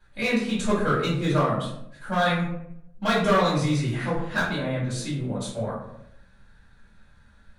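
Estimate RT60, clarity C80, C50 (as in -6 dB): 0.75 s, 6.5 dB, 2.5 dB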